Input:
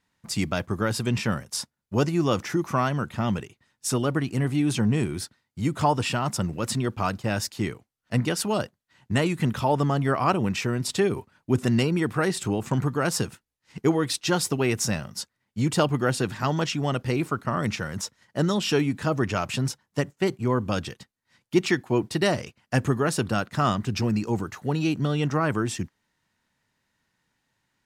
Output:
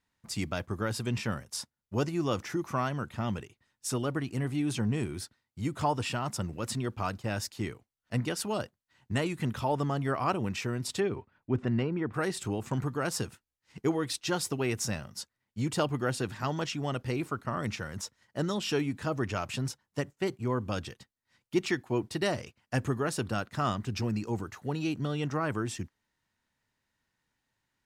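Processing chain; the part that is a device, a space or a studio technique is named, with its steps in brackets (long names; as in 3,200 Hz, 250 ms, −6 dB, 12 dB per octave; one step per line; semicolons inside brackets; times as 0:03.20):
low shelf boost with a cut just above (low-shelf EQ 79 Hz +5 dB; parametric band 170 Hz −3.5 dB 0.65 octaves)
0:11.00–0:12.13: low-pass filter 3,700 Hz → 1,600 Hz 12 dB per octave
level −6.5 dB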